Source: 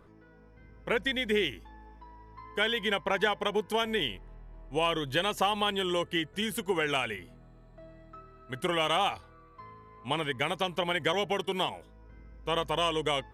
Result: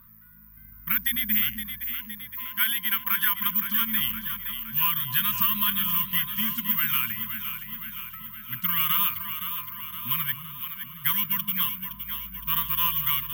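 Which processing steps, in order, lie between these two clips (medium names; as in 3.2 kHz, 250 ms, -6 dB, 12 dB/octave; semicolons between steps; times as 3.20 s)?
1.65–3.38 s: resonant low shelf 590 Hz -6.5 dB, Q 1.5; careless resampling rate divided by 3×, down filtered, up zero stuff; 10.34–11.04 s: amplifier tone stack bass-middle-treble 10-0-1; echo whose repeats swap between lows and highs 258 ms, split 890 Hz, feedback 78%, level -6.5 dB; FFT band-reject 250–980 Hz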